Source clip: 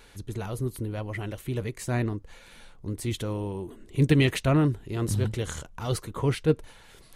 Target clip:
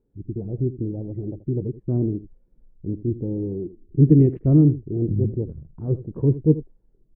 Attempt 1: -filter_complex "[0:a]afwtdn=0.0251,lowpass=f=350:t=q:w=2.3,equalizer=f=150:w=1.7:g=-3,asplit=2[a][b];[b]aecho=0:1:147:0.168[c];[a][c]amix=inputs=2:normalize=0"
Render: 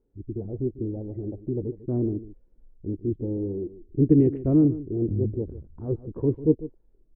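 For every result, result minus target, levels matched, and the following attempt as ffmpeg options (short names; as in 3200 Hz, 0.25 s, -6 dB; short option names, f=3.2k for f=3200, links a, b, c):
echo 67 ms late; 125 Hz band -3.5 dB
-filter_complex "[0:a]afwtdn=0.0251,lowpass=f=350:t=q:w=2.3,equalizer=f=150:w=1.7:g=-3,asplit=2[a][b];[b]aecho=0:1:80:0.168[c];[a][c]amix=inputs=2:normalize=0"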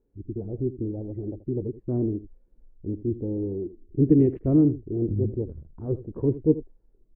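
125 Hz band -3.5 dB
-filter_complex "[0:a]afwtdn=0.0251,lowpass=f=350:t=q:w=2.3,equalizer=f=150:w=1.7:g=6.5,asplit=2[a][b];[b]aecho=0:1:80:0.168[c];[a][c]amix=inputs=2:normalize=0"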